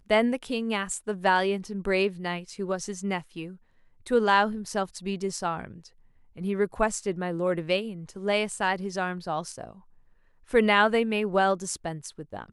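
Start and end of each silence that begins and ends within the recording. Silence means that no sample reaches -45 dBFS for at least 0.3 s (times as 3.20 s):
3.56–4.06 s
5.88–6.36 s
9.79–10.49 s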